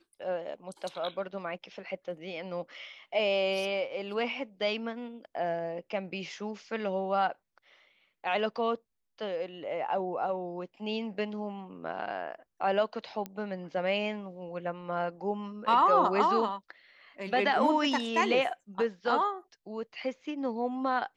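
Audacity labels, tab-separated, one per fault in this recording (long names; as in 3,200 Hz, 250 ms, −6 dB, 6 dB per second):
13.260000	13.260000	click −23 dBFS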